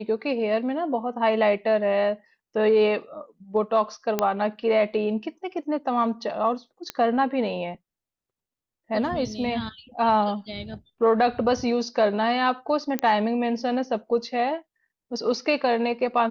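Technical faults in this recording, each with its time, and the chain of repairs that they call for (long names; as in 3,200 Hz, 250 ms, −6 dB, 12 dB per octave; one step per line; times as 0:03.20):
0:04.19: click −8 dBFS
0:06.90: click −13 dBFS
0:12.99: click −11 dBFS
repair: click removal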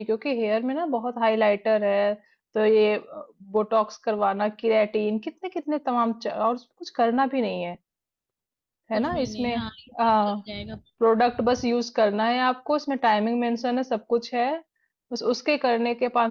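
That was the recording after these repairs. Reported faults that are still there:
none of them is left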